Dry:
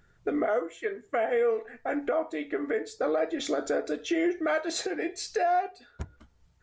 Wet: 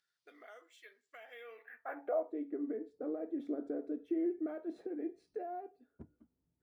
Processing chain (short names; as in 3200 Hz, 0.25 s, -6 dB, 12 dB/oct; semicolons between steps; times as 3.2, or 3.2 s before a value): band-pass sweep 4800 Hz -> 270 Hz, 1.29–2.48; decimation joined by straight lines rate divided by 3×; gain -3.5 dB